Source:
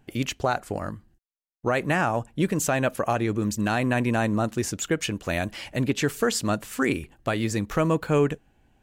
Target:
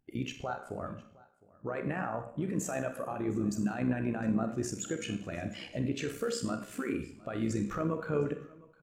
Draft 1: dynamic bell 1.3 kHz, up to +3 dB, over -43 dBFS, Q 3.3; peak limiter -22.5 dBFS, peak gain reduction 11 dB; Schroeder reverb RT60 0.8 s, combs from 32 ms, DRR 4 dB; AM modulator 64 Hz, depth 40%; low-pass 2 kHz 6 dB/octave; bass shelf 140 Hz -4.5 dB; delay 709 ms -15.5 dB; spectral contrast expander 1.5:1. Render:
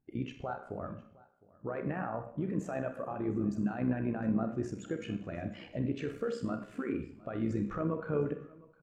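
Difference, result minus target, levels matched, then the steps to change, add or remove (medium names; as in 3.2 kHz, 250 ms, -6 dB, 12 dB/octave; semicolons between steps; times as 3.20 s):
2 kHz band -3.0 dB
remove: low-pass 2 kHz 6 dB/octave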